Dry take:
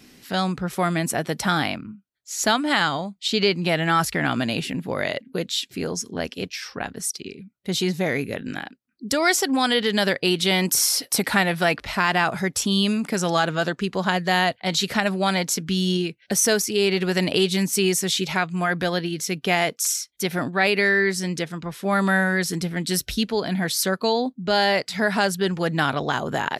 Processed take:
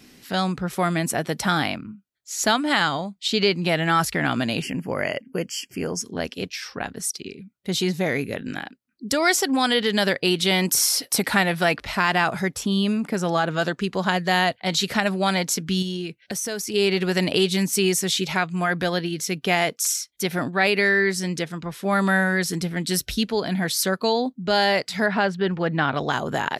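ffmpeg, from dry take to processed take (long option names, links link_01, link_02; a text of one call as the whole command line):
ffmpeg -i in.wav -filter_complex "[0:a]asettb=1/sr,asplit=3[link_01][link_02][link_03];[link_01]atrim=end=4.624[link_04];[link_02]atrim=start=4.62:end=6.01,asetpts=PTS-STARTPTS,afade=type=in:duration=0.004:curve=qsin,afade=type=out:start_time=1.386:duration=0.004:curve=qsin,asuperstop=centerf=3800:order=12:qfactor=2.9[link_05];[link_03]atrim=start=6.006[link_06];[link_04][link_05]acrossfade=duration=0.004:curve1=hsin:curve2=qsin[link_07];[link_07][link_06]acrossfade=duration=0.004:curve1=qsin:curve2=hsin,asettb=1/sr,asplit=3[link_08][link_09][link_10];[link_08]atrim=end=12.544[link_11];[link_09]atrim=start=12.54:end=13.51,asetpts=PTS-STARTPTS,afade=type=in:duration=0.004:curve=qsin,afade=type=out:start_time=0.966:duration=0.004:curve=qsin,equalizer=frequency=7000:width_type=o:width=2.9:gain=-7.5[link_12];[link_10]atrim=start=13.506[link_13];[link_11][link_12]acrossfade=duration=0.004:curve1=hsin:curve2=qsin[link_14];[link_14][link_13]acrossfade=duration=0.004:curve1=qsin:curve2=hsin,asettb=1/sr,asplit=3[link_15][link_16][link_17];[link_15]atrim=end=15.824[link_18];[link_16]atrim=start=15.82:end=16.74,asetpts=PTS-STARTPTS,afade=type=in:duration=0.004:curve=qsin,afade=type=out:start_time=0.916:duration=0.004:curve=qsin,acompressor=threshold=-26dB:ratio=4:attack=3.2:release=140:knee=1:detection=peak[link_19];[link_17]atrim=start=16.736[link_20];[link_18][link_19]acrossfade=duration=0.004:curve1=hsin:curve2=qsin[link_21];[link_21][link_20]acrossfade=duration=0.004:curve1=qsin:curve2=hsin,asettb=1/sr,asplit=3[link_22][link_23][link_24];[link_22]atrim=end=25.064[link_25];[link_23]atrim=start=25.06:end=25.95,asetpts=PTS-STARTPTS,afade=type=in:duration=0.004:curve=qsin,afade=type=out:start_time=0.886:duration=0.004:curve=qsin,lowpass=2900[link_26];[link_24]atrim=start=25.946[link_27];[link_25][link_26]acrossfade=duration=0.004:curve1=hsin:curve2=qsin[link_28];[link_28][link_27]acrossfade=duration=0.004:curve1=qsin:curve2=hsin" out.wav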